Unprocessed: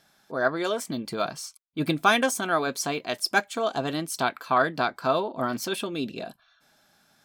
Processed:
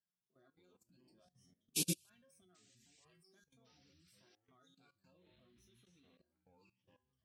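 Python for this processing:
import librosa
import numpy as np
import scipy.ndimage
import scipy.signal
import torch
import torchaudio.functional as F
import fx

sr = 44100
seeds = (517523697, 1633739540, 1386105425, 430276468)

y = fx.spec_ripple(x, sr, per_octave=1.3, drift_hz=0.96, depth_db=12)
y = fx.highpass(y, sr, hz=49.0, slope=6)
y = fx.low_shelf(y, sr, hz=430.0, db=8.0)
y = fx.hum_notches(y, sr, base_hz=50, count=10)
y = fx.comb_fb(y, sr, f0_hz=180.0, decay_s=0.62, harmonics='all', damping=0.0, mix_pct=90)
y = fx.spec_paint(y, sr, seeds[0], shape='noise', start_s=1.74, length_s=0.36, low_hz=2300.0, high_hz=12000.0, level_db=-31.0)
y = fx.dereverb_blind(y, sr, rt60_s=0.95)
y = fx.echo_pitch(y, sr, ms=82, semitones=-6, count=3, db_per_echo=-6.0)
y = fx.peak_eq(y, sr, hz=900.0, db=-13.5, octaves=1.9)
y = fx.level_steps(y, sr, step_db=16)
y = fx.upward_expand(y, sr, threshold_db=-46.0, expansion=2.5)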